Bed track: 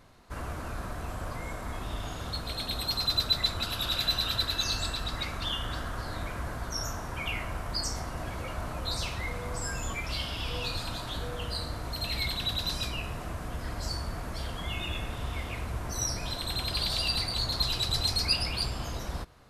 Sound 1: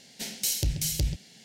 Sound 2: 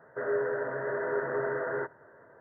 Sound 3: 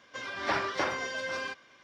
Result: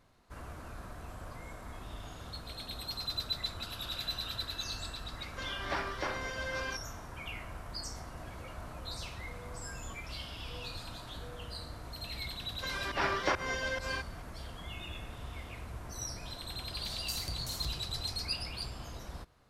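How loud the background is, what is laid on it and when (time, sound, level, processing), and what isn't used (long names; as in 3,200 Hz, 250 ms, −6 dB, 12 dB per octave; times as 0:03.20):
bed track −9 dB
0:05.23: mix in 3 −4.5 dB + speech leveller within 3 dB
0:12.48: mix in 3 + fake sidechain pumping 138 BPM, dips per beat 1, −22 dB, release 170 ms
0:16.65: mix in 1 −14.5 dB + feedback echo with a swinging delay time 83 ms, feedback 53%, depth 129 cents, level −12.5 dB
not used: 2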